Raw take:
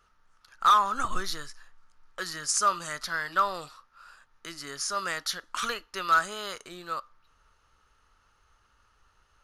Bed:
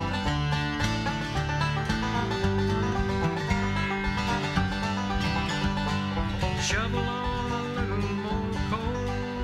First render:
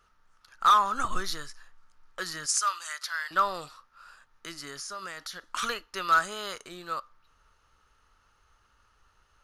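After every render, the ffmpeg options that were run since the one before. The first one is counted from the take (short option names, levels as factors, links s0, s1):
-filter_complex "[0:a]asettb=1/sr,asplit=3[s0][s1][s2];[s0]atrim=end=2.464[s3];[s1]atrim=start=2.46:end=3.31,asetpts=PTS-STARTPTS,afade=t=in:d=0.004:c=qsin,afade=t=out:st=0.846:d=0.004:c=qsin,highpass=1300[s4];[s2]atrim=start=3.306[s5];[s3][s4]acrossfade=d=0.004:c1=hsin:c2=qsin[s6];[s6][s5]acrossfade=d=0.004:c1=qsin:c2=hsin,asettb=1/sr,asplit=3[s7][s8][s9];[s7]atrim=end=4.604[s10];[s8]atrim=start=4.6:end=5.52,asetpts=PTS-STARTPTS,afade=t=in:d=0.004:c=qsin,afade=t=out:st=0.916:d=0.004:c=qsin,acompressor=threshold=0.0158:ratio=4:attack=3.2:release=140:knee=1:detection=peak[s11];[s9]atrim=start=5.516[s12];[s10][s11]acrossfade=d=0.004:c1=hsin:c2=qsin[s13];[s13][s12]acrossfade=d=0.004:c1=qsin:c2=hsin"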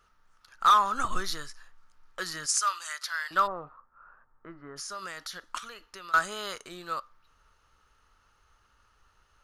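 -filter_complex "[0:a]asplit=3[s0][s1][s2];[s0]afade=t=out:st=3.46:d=0.02[s3];[s1]lowpass=f=1400:w=0.5412,lowpass=f=1400:w=1.3066,afade=t=in:st=3.46:d=0.02,afade=t=out:st=4.76:d=0.02[s4];[s2]afade=t=in:st=4.76:d=0.02[s5];[s3][s4][s5]amix=inputs=3:normalize=0,asettb=1/sr,asplit=3[s6][s7][s8];[s6]atrim=end=5.584[s9];[s7]atrim=start=5.58:end=6.14,asetpts=PTS-STARTPTS,afade=t=in:d=0.004:c=qsin,afade=t=out:st=0.556:d=0.004:c=qsin,acompressor=threshold=0.00708:ratio=4:attack=3.2:release=140:knee=1:detection=peak[s10];[s8]atrim=start=6.136[s11];[s9][s10]acrossfade=d=0.004:c1=hsin:c2=qsin[s12];[s12][s11]acrossfade=d=0.004:c1=qsin:c2=hsin"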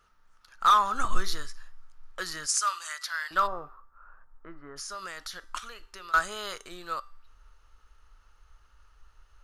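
-af "asubboost=boost=5.5:cutoff=58,bandreject=f=390.2:t=h:w=4,bandreject=f=780.4:t=h:w=4,bandreject=f=1170.6:t=h:w=4,bandreject=f=1560.8:t=h:w=4,bandreject=f=1951:t=h:w=4,bandreject=f=2341.2:t=h:w=4,bandreject=f=2731.4:t=h:w=4,bandreject=f=3121.6:t=h:w=4,bandreject=f=3511.8:t=h:w=4,bandreject=f=3902:t=h:w=4,bandreject=f=4292.2:t=h:w=4,bandreject=f=4682.4:t=h:w=4,bandreject=f=5072.6:t=h:w=4,bandreject=f=5462.8:t=h:w=4,bandreject=f=5853:t=h:w=4,bandreject=f=6243.2:t=h:w=4,bandreject=f=6633.4:t=h:w=4,bandreject=f=7023.6:t=h:w=4,bandreject=f=7413.8:t=h:w=4,bandreject=f=7804:t=h:w=4,bandreject=f=8194.2:t=h:w=4,bandreject=f=8584.4:t=h:w=4,bandreject=f=8974.6:t=h:w=4,bandreject=f=9364.8:t=h:w=4,bandreject=f=9755:t=h:w=4,bandreject=f=10145.2:t=h:w=4,bandreject=f=10535.4:t=h:w=4,bandreject=f=10925.6:t=h:w=4,bandreject=f=11315.8:t=h:w=4,bandreject=f=11706:t=h:w=4,bandreject=f=12096.2:t=h:w=4,bandreject=f=12486.4:t=h:w=4,bandreject=f=12876.6:t=h:w=4,bandreject=f=13266.8:t=h:w=4,bandreject=f=13657:t=h:w=4,bandreject=f=14047.2:t=h:w=4,bandreject=f=14437.4:t=h:w=4,bandreject=f=14827.6:t=h:w=4,bandreject=f=15217.8:t=h:w=4"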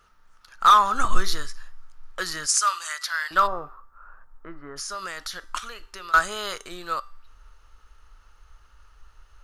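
-af "volume=1.88"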